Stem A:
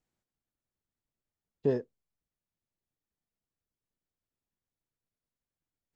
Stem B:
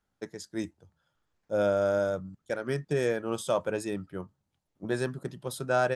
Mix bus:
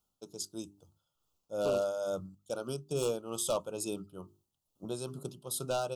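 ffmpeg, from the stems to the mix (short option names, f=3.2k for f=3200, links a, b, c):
-filter_complex "[0:a]volume=-8.5dB[a];[1:a]highshelf=f=8.7k:g=11,bandreject=f=50:t=h:w=6,bandreject=f=100:t=h:w=6,bandreject=f=150:t=h:w=6,bandreject=f=200:t=h:w=6,bandreject=f=250:t=h:w=6,bandreject=f=300:t=h:w=6,bandreject=f=350:t=h:w=6,bandreject=f=400:t=h:w=6,tremolo=f=2.3:d=0.54,volume=-3dB[b];[a][b]amix=inputs=2:normalize=0,highshelf=f=2.2k:g=5.5,aeval=exprs='0.0708*(abs(mod(val(0)/0.0708+3,4)-2)-1)':c=same,asuperstop=centerf=1900:order=8:qfactor=1.5"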